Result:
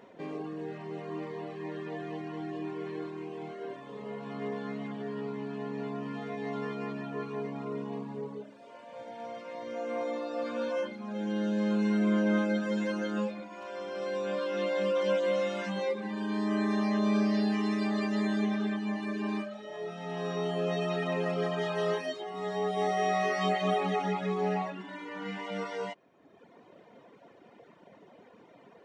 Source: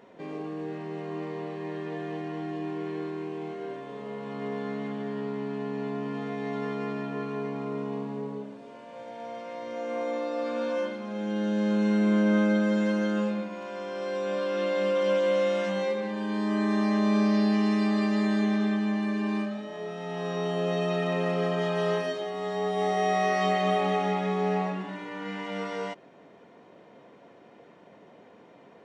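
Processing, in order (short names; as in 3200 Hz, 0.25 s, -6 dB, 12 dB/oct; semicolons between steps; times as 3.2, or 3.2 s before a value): reverb removal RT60 1.1 s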